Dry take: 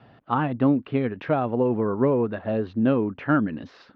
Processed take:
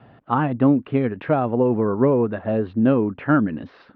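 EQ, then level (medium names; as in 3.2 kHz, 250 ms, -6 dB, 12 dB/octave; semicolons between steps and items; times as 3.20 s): distance through air 240 m; +4.0 dB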